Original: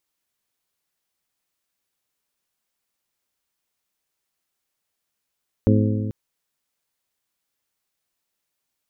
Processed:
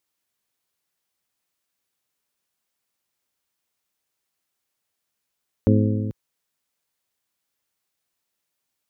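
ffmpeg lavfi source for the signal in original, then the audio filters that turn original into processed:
-f lavfi -i "aevalsrc='0.178*pow(10,-3*t/2.21)*sin(2*PI*106*t)+0.141*pow(10,-3*t/1.795)*sin(2*PI*212*t)+0.112*pow(10,-3*t/1.7)*sin(2*PI*254.4*t)+0.0891*pow(10,-3*t/1.589)*sin(2*PI*318*t)+0.0708*pow(10,-3*t/1.458)*sin(2*PI*424*t)+0.0562*pow(10,-3*t/1.364)*sin(2*PI*530*t)':d=0.44:s=44100"
-af "highpass=46"

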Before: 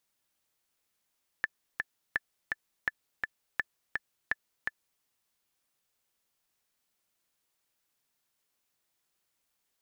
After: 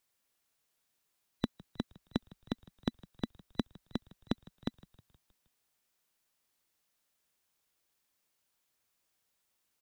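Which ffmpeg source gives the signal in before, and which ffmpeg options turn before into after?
-f lavfi -i "aevalsrc='pow(10,(-14.5-3*gte(mod(t,2*60/167),60/167))/20)*sin(2*PI*1750*mod(t,60/167))*exp(-6.91*mod(t,60/167)/0.03)':d=3.59:s=44100"
-filter_complex "[0:a]afftfilt=real='real(if(between(b,1,1012),(2*floor((b-1)/92)+1)*92-b,b),0)':imag='imag(if(between(b,1,1012),(2*floor((b-1)/92)+1)*92-b,b),0)*if(between(b,1,1012),-1,1)':win_size=2048:overlap=0.75,asplit=6[a][b][c][d][e][f];[b]adelay=157,afreqshift=-55,volume=-22dB[g];[c]adelay=314,afreqshift=-110,volume=-26.2dB[h];[d]adelay=471,afreqshift=-165,volume=-30.3dB[i];[e]adelay=628,afreqshift=-220,volume=-34.5dB[j];[f]adelay=785,afreqshift=-275,volume=-38.6dB[k];[a][g][h][i][j][k]amix=inputs=6:normalize=0"

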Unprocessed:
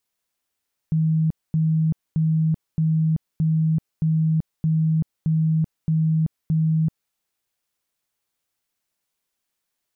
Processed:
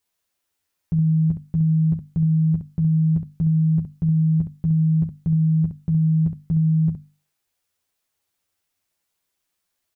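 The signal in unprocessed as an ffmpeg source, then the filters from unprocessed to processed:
-f lavfi -i "aevalsrc='0.15*sin(2*PI*159*mod(t,0.62))*lt(mod(t,0.62),61/159)':d=6.2:s=44100"
-filter_complex "[0:a]equalizer=f=87:t=o:w=0.35:g=6,bandreject=f=50:t=h:w=6,bandreject=f=100:t=h:w=6,bandreject=f=150:t=h:w=6,bandreject=f=200:t=h:w=6,bandreject=f=250:t=h:w=6,asplit=2[a][b];[b]aecho=0:1:11|67:0.708|0.422[c];[a][c]amix=inputs=2:normalize=0"

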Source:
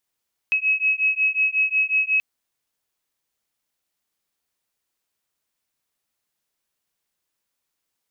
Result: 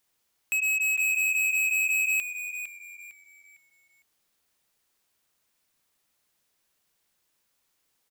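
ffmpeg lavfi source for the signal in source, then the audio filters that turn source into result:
-f lavfi -i "aevalsrc='0.0891*(sin(2*PI*2560*t)+sin(2*PI*2565.5*t))':d=1.68:s=44100"
-filter_complex "[0:a]acontrast=29,asoftclip=type=hard:threshold=-24.5dB,asplit=5[a][b][c][d][e];[b]adelay=455,afreqshift=-89,volume=-10dB[f];[c]adelay=910,afreqshift=-178,volume=-19.9dB[g];[d]adelay=1365,afreqshift=-267,volume=-29.8dB[h];[e]adelay=1820,afreqshift=-356,volume=-39.7dB[i];[a][f][g][h][i]amix=inputs=5:normalize=0"

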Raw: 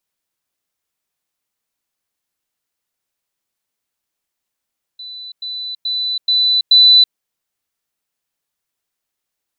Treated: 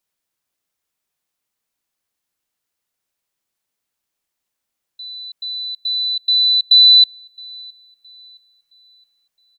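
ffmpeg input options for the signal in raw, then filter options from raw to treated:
-f lavfi -i "aevalsrc='pow(10,(-29+6*floor(t/0.43))/20)*sin(2*PI*3990*t)*clip(min(mod(t,0.43),0.33-mod(t,0.43))/0.005,0,1)':d=2.15:s=44100"
-filter_complex "[0:a]asplit=2[a][b];[b]adelay=667,lowpass=f=3.7k:p=1,volume=-23dB,asplit=2[c][d];[d]adelay=667,lowpass=f=3.7k:p=1,volume=0.55,asplit=2[e][f];[f]adelay=667,lowpass=f=3.7k:p=1,volume=0.55,asplit=2[g][h];[h]adelay=667,lowpass=f=3.7k:p=1,volume=0.55[i];[a][c][e][g][i]amix=inputs=5:normalize=0"

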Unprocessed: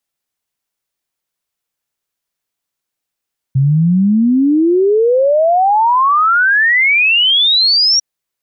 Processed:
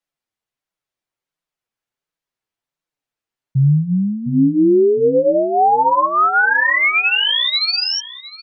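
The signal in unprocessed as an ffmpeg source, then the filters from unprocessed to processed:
-f lavfi -i "aevalsrc='0.398*clip(min(t,4.45-t)/0.01,0,1)*sin(2*PI*130*4.45/log(5700/130)*(exp(log(5700/130)*t/4.45)-1))':d=4.45:s=44100"
-filter_complex "[0:a]flanger=delay=5.8:depth=3.8:regen=-4:speed=1.4:shape=triangular,lowpass=f=3.1k:p=1,asplit=2[a][b];[b]adelay=708,lowpass=f=1.8k:p=1,volume=-10dB,asplit=2[c][d];[d]adelay=708,lowpass=f=1.8k:p=1,volume=0.24,asplit=2[e][f];[f]adelay=708,lowpass=f=1.8k:p=1,volume=0.24[g];[a][c][e][g]amix=inputs=4:normalize=0"

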